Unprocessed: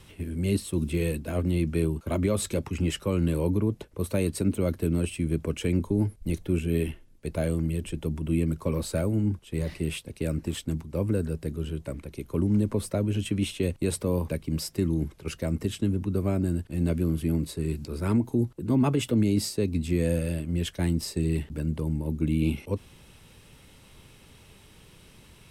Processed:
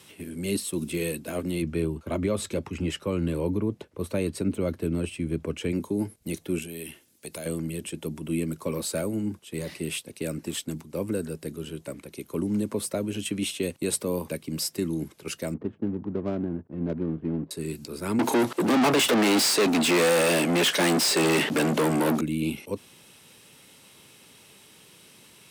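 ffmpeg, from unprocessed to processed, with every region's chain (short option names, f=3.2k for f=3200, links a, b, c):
-filter_complex "[0:a]asettb=1/sr,asplit=3[a][b][c];[a]atrim=end=1.624[d];[b]atrim=start=1.62:end=5.72,asetpts=PTS-STARTPTS,afade=t=in:d=0.004:c=qsin,afade=t=out:st=4.096:d=0.004:c=qsin,lowpass=f=2.7k:p=1,equalizer=f=76:w=1.4:g=10[e];[c]atrim=start=5.716[f];[d][e]acrossfade=d=0.004:c1=hsin:c2=qsin[g];[g][f]acrossfade=d=0.004:c1=qsin:c2=hsin,asettb=1/sr,asplit=3[h][i][j];[h]atrim=end=6.624[k];[i]atrim=start=6.62:end=7.46,asetpts=PTS-STARTPTS,afade=t=in:d=0.004:c=qsin,afade=t=out:st=0.836:d=0.004:c=qsin,highshelf=f=3k:g=10,acompressor=threshold=-35dB:ratio=3:attack=3.2:release=140:knee=1:detection=peak[l];[j]atrim=start=7.456[m];[k][l]acrossfade=d=0.004:c1=hsin:c2=qsin[n];[n][m]acrossfade=d=0.004:c1=qsin:c2=hsin,asettb=1/sr,asplit=3[o][p][q];[o]atrim=end=15.544[r];[p]atrim=start=15.54:end=17.51,asetpts=PTS-STARTPTS,afade=t=in:d=0.004:c=qsin,afade=t=out:st=1.966:d=0.004:c=qsin,lowpass=1.4k,adynamicsmooth=sensitivity=5.5:basefreq=690[s];[q]atrim=start=17.506[t];[r][s]acrossfade=d=0.004:c1=hsin:c2=qsin[u];[u][t]acrossfade=d=0.004:c1=qsin:c2=hsin,asettb=1/sr,asplit=3[v][w][x];[v]atrim=end=18.194[y];[w]atrim=start=18.19:end=22.21,asetpts=PTS-STARTPTS,afade=t=in:d=0.004:c=qsin,afade=t=out:st=4.016:d=0.004:c=qsin,highpass=150,asplit=2[z][aa];[aa]highpass=f=720:p=1,volume=36dB,asoftclip=type=tanh:threshold=-14dB[ab];[z][ab]amix=inputs=2:normalize=0,lowpass=f=2.6k:p=1,volume=-6dB[ac];[x]atrim=start=22.206[ad];[y][ac]acrossfade=d=0.004:c1=hsin:c2=qsin[ae];[ae][ad]acrossfade=d=0.004:c1=qsin:c2=hsin,highpass=190,highshelf=f=3.4k:g=7"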